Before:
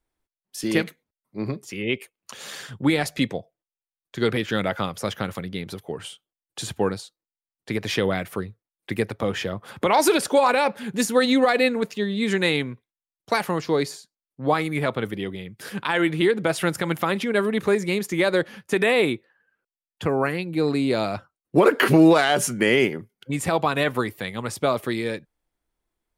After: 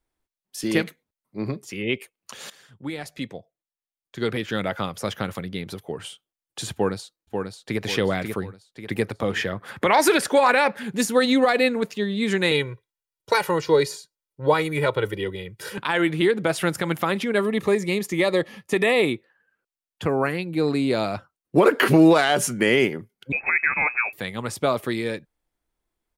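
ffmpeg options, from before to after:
-filter_complex "[0:a]asplit=2[s0][s1];[s1]afade=t=in:st=6.73:d=0.01,afade=t=out:st=7.8:d=0.01,aecho=0:1:540|1080|1620|2160|2700|3240:0.562341|0.253054|0.113874|0.0512434|0.0230595|0.0103768[s2];[s0][s2]amix=inputs=2:normalize=0,asettb=1/sr,asplit=3[s3][s4][s5];[s3]atrim=end=9.364[s6];[s4]atrim=start=9.36:end=10.83,asetpts=PTS-STARTPTS,afade=t=in:d=0.004:c=qsin,afade=t=out:st=1.466:d=0.004:c=qsin,equalizer=f=1800:t=o:w=0.64:g=8[s7];[s5]atrim=start=10.826[s8];[s6][s7]acrossfade=d=0.004:c1=hsin:c2=qsin[s9];[s9][s8]acrossfade=d=0.004:c1=qsin:c2=hsin,asettb=1/sr,asplit=3[s10][s11][s12];[s10]atrim=end=12.514[s13];[s11]atrim=start=12.51:end=15.78,asetpts=PTS-STARTPTS,afade=t=in:d=0.004:c=qsin,afade=t=out:st=3.266:d=0.004:c=qsin,aecho=1:1:2.1:0.86,atrim=end_sample=144207[s14];[s12]atrim=start=15.776[s15];[s13][s14]acrossfade=d=0.004:c1=hsin:c2=qsin[s16];[s16][s15]acrossfade=d=0.004:c1=qsin:c2=hsin,asettb=1/sr,asplit=3[s17][s18][s19];[s17]atrim=end=17.384[s20];[s18]atrim=start=17.38:end=19.14,asetpts=PTS-STARTPTS,afade=t=in:d=0.004:c=qsin,afade=t=out:st=1.756:d=0.004:c=qsin,asuperstop=centerf=1500:order=8:qfactor=6.1[s21];[s19]atrim=start=19.136[s22];[s20][s21]acrossfade=d=0.004:c1=hsin:c2=qsin[s23];[s23][s22]acrossfade=d=0.004:c1=qsin:c2=hsin,asettb=1/sr,asplit=3[s24][s25][s26];[s24]atrim=end=23.324[s27];[s25]atrim=start=23.32:end=24.13,asetpts=PTS-STARTPTS,afade=t=in:d=0.004:c=qsin,afade=t=out:st=0.806:d=0.004:c=qsin,lowpass=f=2300:t=q:w=0.5098,lowpass=f=2300:t=q:w=0.6013,lowpass=f=2300:t=q:w=0.9,lowpass=f=2300:t=q:w=2.563,afreqshift=-2700[s28];[s26]atrim=start=24.126[s29];[s27][s28]acrossfade=d=0.004:c1=hsin:c2=qsin[s30];[s30][s29]acrossfade=d=0.004:c1=qsin:c2=hsin,asplit=2[s31][s32];[s31]atrim=end=2.5,asetpts=PTS-STARTPTS,afade=t=out:st=2.496:d=0.004:c=hsin:silence=0.141254[s33];[s32]atrim=start=2.5,asetpts=PTS-STARTPTS,afade=t=in:d=2.73:silence=0.141254[s34];[s33][s34]concat=n=2:v=0:a=1"

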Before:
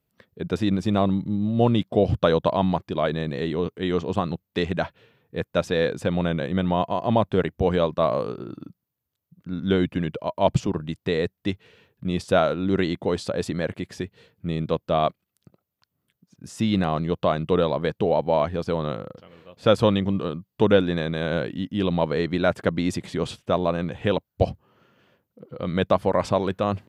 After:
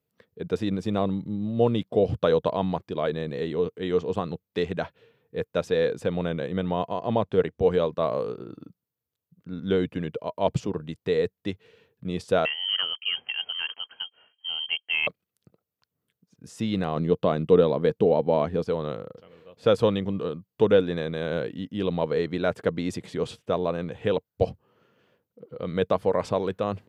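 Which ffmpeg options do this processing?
-filter_complex "[0:a]asettb=1/sr,asplit=3[s0][s1][s2];[s0]atrim=end=6.944[s3];[s1]atrim=start=6.94:end=7.62,asetpts=PTS-STARTPTS,afade=t=in:d=0.004:c=qsin,afade=t=out:st=0.676:d=0.004:c=qsin,lowpass=8300[s4];[s2]atrim=start=7.616[s5];[s3][s4]acrossfade=d=0.004:c1=hsin:c2=qsin[s6];[s6][s5]acrossfade=d=0.004:c1=qsin:c2=hsin,asettb=1/sr,asplit=3[s7][s8][s9];[s7]atrim=end=12.454[s10];[s8]atrim=start=12.45:end=15.07,asetpts=PTS-STARTPTS,afade=t=in:d=0.004:c=qsin,afade=t=out:st=2.616:d=0.004:c=qsin,lowpass=f=2800:t=q:w=0.5098,lowpass=f=2800:t=q:w=0.6013,lowpass=f=2800:t=q:w=0.9,lowpass=f=2800:t=q:w=2.563,afreqshift=-3300[s11];[s9]atrim=start=15.066[s12];[s10][s11]acrossfade=d=0.004:c1=hsin:c2=qsin[s13];[s13][s12]acrossfade=d=0.004:c1=qsin:c2=hsin,asettb=1/sr,asplit=3[s14][s15][s16];[s14]atrim=end=16.964[s17];[s15]atrim=start=16.96:end=18.64,asetpts=PTS-STARTPTS,afade=t=in:d=0.004:c=qsin,afade=t=out:st=1.676:d=0.004:c=qsin,equalizer=f=230:t=o:w=1.8:g=6.5[s18];[s16]atrim=start=18.636[s19];[s17][s18]acrossfade=d=0.004:c1=hsin:c2=qsin[s20];[s20][s19]acrossfade=d=0.004:c1=qsin:c2=hsin,highpass=69,equalizer=f=460:w=6:g=8.5,volume=0.562"

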